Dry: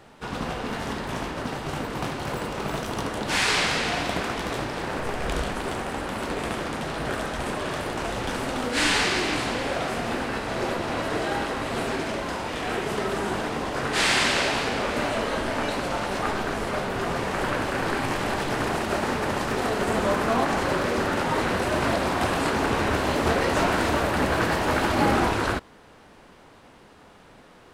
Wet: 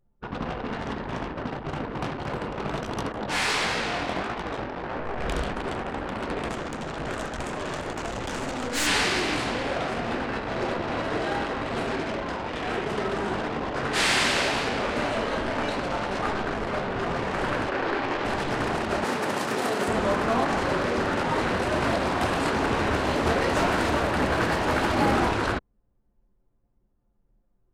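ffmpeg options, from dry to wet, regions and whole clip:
-filter_complex "[0:a]asettb=1/sr,asplit=3[a][b][c];[a]atrim=end=3.124[d];[b]atrim=start=3.12:end=5.18,asetpts=PTS-STARTPTS,afade=t=in:d=0.004:c=qsin,afade=t=out:st=2.056:d=0.004:c=qsin,flanger=delay=16.5:depth=7.9:speed=1.6,equalizer=f=870:t=o:w=2:g=3,volume=16.5dB,asoftclip=hard,volume=-16.5dB[e];[c]atrim=start=5.176[f];[d][e]acrossfade=d=0.004:c1=hsin:c2=qsin[g];[g][f]acrossfade=d=0.004:c1=qsin:c2=hsin,asettb=1/sr,asplit=3[h][i][j];[h]atrim=end=6.494[k];[i]atrim=start=6.49:end=8.87,asetpts=PTS-STARTPTS,afade=t=in:d=0.004:c=qsin,afade=t=out:st=2.376:d=0.004:c=qsin,equalizer=f=7k:w=2.1:g=8.5,aeval=exprs='clip(val(0),-1,0.0316)':c=same[l];[j]atrim=start=8.866[m];[k][l]acrossfade=d=0.004:c1=hsin:c2=qsin[n];[n][m]acrossfade=d=0.004:c1=qsin:c2=hsin,asettb=1/sr,asplit=3[o][p][q];[o]atrim=end=17.694[r];[p]atrim=start=17.69:end=18.25,asetpts=PTS-STARTPTS,afade=t=in:d=0.004:c=qsin,afade=t=out:st=0.556:d=0.004:c=qsin,lowpass=5.1k,lowshelf=f=250:t=q:w=1.5:g=-6.5[s];[q]atrim=start=18.246[t];[r][s]acrossfade=d=0.004:c1=hsin:c2=qsin[u];[u][t]acrossfade=d=0.004:c1=qsin:c2=hsin,asettb=1/sr,asplit=3[v][w][x];[v]atrim=end=19.044[y];[w]atrim=start=19.04:end=19.88,asetpts=PTS-STARTPTS,afade=t=in:d=0.004:c=qsin,afade=t=out:st=0.836:d=0.004:c=qsin,highpass=160,highshelf=f=7.1k:g=8[z];[x]atrim=start=19.876[aa];[y][z]acrossfade=d=0.004:c1=hsin:c2=qsin[ab];[ab][aa]acrossfade=d=0.004:c1=qsin:c2=hsin,anlmdn=25.1,acontrast=66,volume=-7dB"

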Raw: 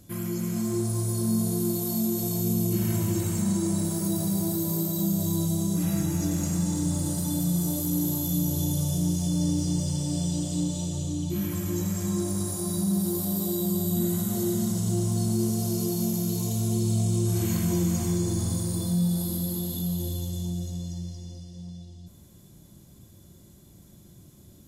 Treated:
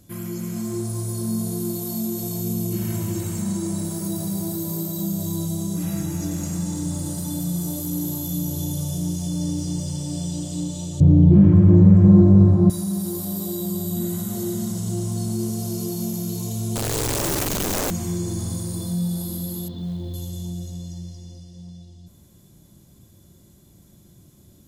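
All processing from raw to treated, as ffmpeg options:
-filter_complex "[0:a]asettb=1/sr,asplit=3[a][b][c];[a]atrim=end=11.004[d];[b]atrim=start=11:end=12.7,asetpts=PTS-STARTPTS,afade=t=in:d=0.004:c=qsin,afade=t=out:st=1.696:d=0.004:c=qsin,equalizer=f=120:t=o:w=2.9:g=15,acontrast=54,lowpass=1.3k[e];[c]atrim=start=12.696[f];[d][e]acrossfade=d=0.004:c1=hsin:c2=qsin[g];[g][f]acrossfade=d=0.004:c1=qsin:c2=hsin,asettb=1/sr,asplit=3[h][i][j];[h]atrim=end=16.754[k];[i]atrim=start=16.75:end=17.91,asetpts=PTS-STARTPTS,afade=t=in:d=0.004:c=qsin,afade=t=out:st=1.156:d=0.004:c=qsin,asubboost=boost=12:cutoff=110,aeval=exprs='(mod(9.44*val(0)+1,2)-1)/9.44':c=same[l];[j]atrim=start=17.906[m];[k][l]acrossfade=d=0.004:c1=hsin:c2=qsin[n];[n][m]acrossfade=d=0.004:c1=qsin:c2=hsin,asettb=1/sr,asplit=3[o][p][q];[o]atrim=end=19.684[r];[p]atrim=start=19.68:end=20.14,asetpts=PTS-STARTPTS,afade=t=in:d=0.004:c=qsin,afade=t=out:st=0.456:d=0.004:c=qsin,lowpass=f=3.8k:w=0.5412,lowpass=f=3.8k:w=1.3066,equalizer=f=2.5k:t=o:w=0.35:g=-13,acrusher=bits=8:mode=log:mix=0:aa=0.000001[s];[q]atrim=start=20.136[t];[r][s]acrossfade=d=0.004:c1=hsin:c2=qsin[u];[u][t]acrossfade=d=0.004:c1=qsin:c2=hsin"

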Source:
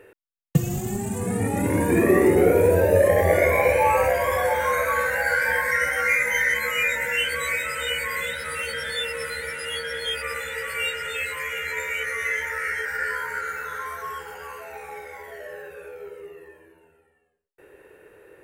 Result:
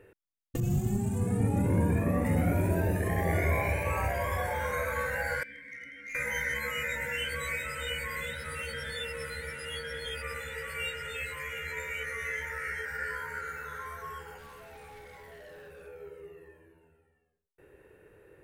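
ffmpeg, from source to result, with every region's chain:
-filter_complex "[0:a]asettb=1/sr,asplit=3[a][b][c];[a]atrim=end=0.604[d];[b]atrim=start=0.6:end=2.25,asetpts=PTS-STARTPTS,afade=t=in:d=0.004:c=qsin,afade=t=out:st=1.646:d=0.004:c=qsin,bandreject=f=1.9k:w=11,adynamicequalizer=threshold=0.0126:dfrequency=1700:dqfactor=0.7:tfrequency=1700:tqfactor=0.7:attack=5:release=100:ratio=0.375:range=3.5:mode=cutabove:tftype=highshelf[e];[c]atrim=start=2.246[f];[d][e]acrossfade=d=0.004:c1=hsin:c2=qsin[g];[g][f]acrossfade=d=0.004:c1=qsin:c2=hsin,asettb=1/sr,asplit=3[h][i][j];[h]atrim=end=5.434[k];[i]atrim=start=5.43:end=6.15,asetpts=PTS-STARTPTS,afade=t=in:d=0.004:c=qsin,afade=t=out:st=0.716:d=0.004:c=qsin,asplit=3[l][m][n];[l]bandpass=f=270:t=q:w=8,volume=0dB[o];[m]bandpass=f=2.29k:t=q:w=8,volume=-6dB[p];[n]bandpass=f=3.01k:t=q:w=8,volume=-9dB[q];[o][p][q]amix=inputs=3:normalize=0,asoftclip=type=hard:threshold=-30dB[r];[j]atrim=start=6.146[s];[k][r]acrossfade=d=0.004:c1=hsin:c2=qsin[t];[t][s]acrossfade=d=0.004:c1=qsin:c2=hsin,asettb=1/sr,asplit=3[u][v][w];[u]atrim=end=14.384[x];[v]atrim=start=14.38:end=15.87,asetpts=PTS-STARTPTS,afade=t=in:d=0.004:c=qsin,afade=t=out:st=1.486:d=0.004:c=qsin,equalizer=f=9k:t=o:w=0.22:g=5,asoftclip=type=hard:threshold=-39dB,acrusher=bits=7:mode=log:mix=0:aa=0.000001[y];[w]atrim=start=15.866[z];[x][y]acrossfade=d=0.004:c1=hsin:c2=qsin[aa];[aa][z]acrossfade=d=0.004:c1=qsin:c2=hsin,afftfilt=real='re*lt(hypot(re,im),0.631)':imag='im*lt(hypot(re,im),0.631)':win_size=1024:overlap=0.75,bass=f=250:g=11,treble=f=4k:g=-1,volume=-8.5dB"

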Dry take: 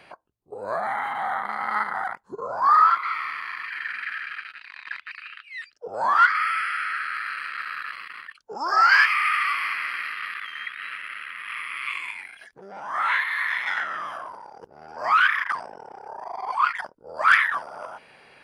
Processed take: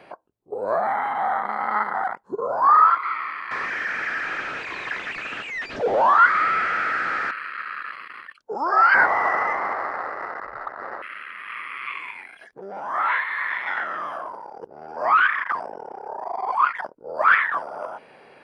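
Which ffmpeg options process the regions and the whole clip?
-filter_complex "[0:a]asettb=1/sr,asplit=3[a][b][c];[a]atrim=end=3.514[d];[b]atrim=start=3.51:end=7.31,asetpts=PTS-STARTPTS,afade=t=in:d=0.004:c=qsin,afade=t=out:st=3.796:d=0.004:c=qsin,aeval=exprs='val(0)+0.5*0.0531*sgn(val(0))':c=same,lowpass=f=7.5k:w=0.5412,lowpass=f=7.5k:w=1.3066[e];[c]atrim=start=7.306[f];[d][e]acrossfade=d=0.004:c1=hsin:c2=qsin[g];[g][f]acrossfade=d=0.004:c1=qsin:c2=hsin,asettb=1/sr,asplit=3[h][i][j];[h]atrim=end=8.944[k];[i]atrim=start=8.94:end=11.02,asetpts=PTS-STARTPTS,afade=t=in:d=0.004:c=qsin,afade=t=out:st=2.076:d=0.004:c=qsin,lowpass=f=2.7k:t=q:w=0.5098,lowpass=f=2.7k:t=q:w=0.6013,lowpass=f=2.7k:t=q:w=0.9,lowpass=f=2.7k:t=q:w=2.563,afreqshift=-3200,adynamicsmooth=sensitivity=2.5:basefreq=2.3k[l];[j]atrim=start=11.016[m];[k][l]acrossfade=d=0.004:c1=hsin:c2=qsin[n];[n][m]acrossfade=d=0.004:c1=qsin:c2=hsin,acrossover=split=3700[o][p];[p]acompressor=threshold=-53dB:ratio=4:attack=1:release=60[q];[o][q]amix=inputs=2:normalize=0,equalizer=f=430:w=0.35:g=12.5,volume=-5dB"

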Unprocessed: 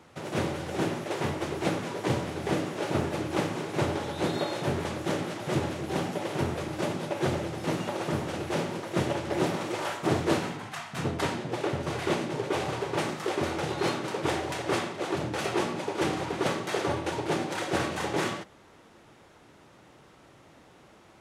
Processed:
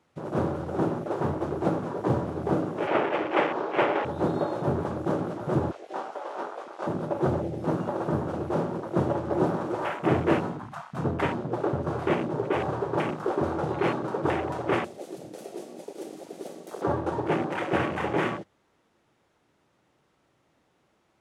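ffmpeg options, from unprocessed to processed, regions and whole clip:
-filter_complex "[0:a]asettb=1/sr,asplit=3[a][b][c];[a]atrim=end=2.874[d];[b]atrim=start=2.87:end=4.05,asetpts=PTS-STARTPTS,afade=t=in:d=0.004:c=qsin,afade=t=out:st=1.176:d=0.004:c=qsin,highpass=f=230:p=1,acrossover=split=340 5500:gain=0.178 1 0.1[e][f][g];[e][f][g]amix=inputs=3:normalize=0,acontrast=38[h];[c]atrim=start=4.046[i];[d][h]acrossfade=d=0.004:c1=hsin:c2=qsin[j];[j][i]acrossfade=d=0.004:c1=qsin:c2=hsin,asettb=1/sr,asplit=3[k][l][m];[k]atrim=end=5.714[n];[l]atrim=start=5.71:end=6.87,asetpts=PTS-STARTPTS,afade=t=in:d=0.004:c=qsin,afade=t=out:st=1.156:d=0.004:c=qsin,highpass=720,lowpass=7.7k,asplit=2[o][p];[p]adelay=21,volume=-5.5dB[q];[o][q]amix=inputs=2:normalize=0,atrim=end_sample=51156[r];[m]atrim=start=6.866[s];[n][r]acrossfade=d=0.004:c1=hsin:c2=qsin[t];[t][s]acrossfade=d=0.004:c1=qsin:c2=hsin,asettb=1/sr,asplit=3[u][v][w];[u]atrim=end=14.844[x];[v]atrim=start=14.84:end=16.82,asetpts=PTS-STARTPTS,afade=t=in:d=0.004:c=qsin,afade=t=out:st=1.976:d=0.004:c=qsin,aemphasis=mode=production:type=bsi,acrossover=split=230|1200|3900[y][z][aa][ab];[y]acompressor=threshold=-53dB:ratio=3[ac];[z]acompressor=threshold=-42dB:ratio=3[ad];[aa]acompressor=threshold=-50dB:ratio=3[ae];[ab]acompressor=threshold=-41dB:ratio=3[af];[ac][ad][ae][af]amix=inputs=4:normalize=0[ag];[w]atrim=start=16.816[ah];[x][ag]acrossfade=d=0.004:c1=hsin:c2=qsin[ai];[ai][ah]acrossfade=d=0.004:c1=qsin:c2=hsin,bandreject=f=50:t=h:w=6,bandreject=f=100:t=h:w=6,afwtdn=0.02,volume=3dB"

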